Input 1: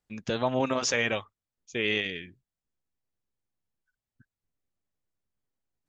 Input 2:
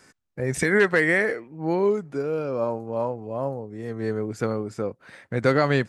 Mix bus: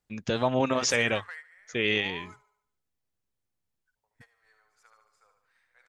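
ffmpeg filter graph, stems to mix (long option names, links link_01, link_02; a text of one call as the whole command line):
ffmpeg -i stem1.wav -i stem2.wav -filter_complex "[0:a]equalizer=frequency=97:width=1.5:gain=2,volume=1.5dB,asplit=2[link_01][link_02];[1:a]highpass=frequency=900:width=0.5412,highpass=frequency=900:width=1.3066,acompressor=threshold=-31dB:ratio=10,adelay=350,volume=-7.5dB,asplit=3[link_03][link_04][link_05];[link_03]atrim=end=2.44,asetpts=PTS-STARTPTS,afade=type=out:start_time=2.436:duration=0.004:curve=hsin[link_06];[link_04]atrim=start=2.44:end=3.96,asetpts=PTS-STARTPTS,volume=0[link_07];[link_05]atrim=start=3.96,asetpts=PTS-STARTPTS,afade=type=in:duration=0.004:curve=hsin[link_08];[link_06][link_07][link_08]concat=n=3:v=0:a=1,asplit=2[link_09][link_10];[link_10]volume=-17dB[link_11];[link_02]apad=whole_len=274806[link_12];[link_09][link_12]sidechaingate=range=-33dB:threshold=-56dB:ratio=16:detection=peak[link_13];[link_11]aecho=0:1:73|146|219|292|365|438|511:1|0.5|0.25|0.125|0.0625|0.0312|0.0156[link_14];[link_01][link_13][link_14]amix=inputs=3:normalize=0" out.wav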